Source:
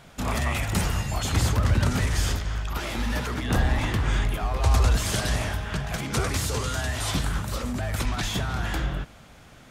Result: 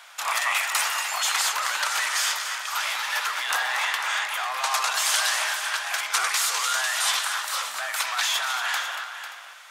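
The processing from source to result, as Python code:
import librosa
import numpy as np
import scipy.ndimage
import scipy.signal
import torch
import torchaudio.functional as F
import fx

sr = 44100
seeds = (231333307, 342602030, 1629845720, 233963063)

p1 = scipy.signal.sosfilt(scipy.signal.butter(4, 910.0, 'highpass', fs=sr, output='sos'), x)
p2 = p1 + fx.echo_multitap(p1, sr, ms=(234, 497, 578), db=(-10.0, -11.0, -19.5), dry=0)
y = p2 * 10.0 ** (7.0 / 20.0)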